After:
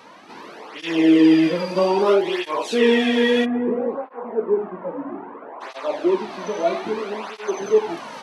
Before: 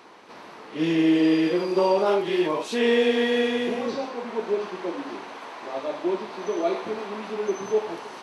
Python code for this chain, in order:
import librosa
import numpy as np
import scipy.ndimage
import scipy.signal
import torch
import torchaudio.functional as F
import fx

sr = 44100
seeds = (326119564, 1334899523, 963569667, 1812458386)

y = fx.bessel_lowpass(x, sr, hz=990.0, order=4, at=(3.44, 5.6), fade=0.02)
y = fx.flanger_cancel(y, sr, hz=0.61, depth_ms=2.9)
y = y * librosa.db_to_amplitude(7.0)